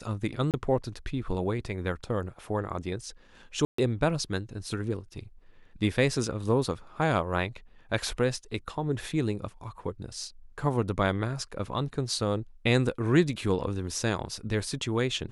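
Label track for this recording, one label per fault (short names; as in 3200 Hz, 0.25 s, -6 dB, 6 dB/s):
0.510000	0.540000	gap 28 ms
3.650000	3.780000	gap 0.134 s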